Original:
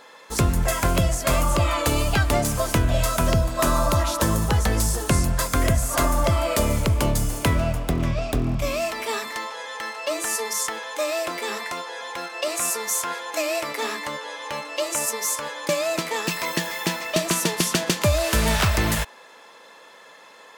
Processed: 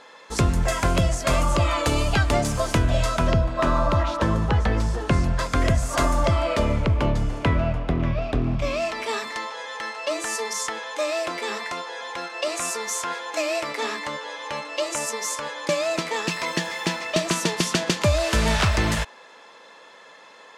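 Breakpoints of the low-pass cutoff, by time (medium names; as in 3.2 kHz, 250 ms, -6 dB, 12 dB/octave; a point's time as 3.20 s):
2.95 s 7.4 kHz
3.46 s 3 kHz
4.97 s 3 kHz
6.07 s 7.6 kHz
6.78 s 2.9 kHz
8.19 s 2.9 kHz
9.13 s 7.2 kHz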